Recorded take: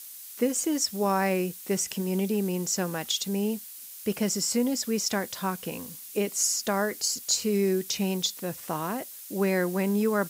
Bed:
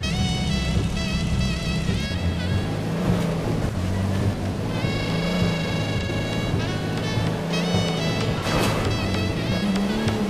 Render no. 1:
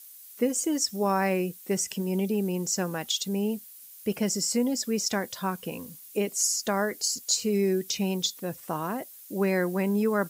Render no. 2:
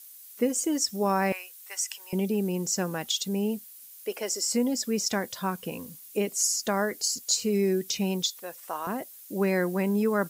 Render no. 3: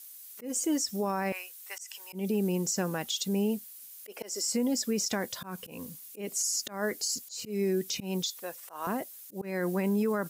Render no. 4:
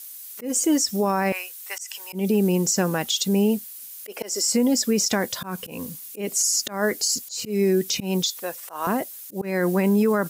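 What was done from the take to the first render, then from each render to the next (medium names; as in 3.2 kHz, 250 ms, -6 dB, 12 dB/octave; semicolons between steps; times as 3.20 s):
noise reduction 8 dB, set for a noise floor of -44 dBFS
1.32–2.13 s: high-pass 910 Hz 24 dB/octave; 3.89–4.48 s: high-pass 360 Hz 24 dB/octave; 8.23–8.87 s: high-pass 590 Hz
peak limiter -21 dBFS, peak gain reduction 8 dB; slow attack 161 ms
trim +8.5 dB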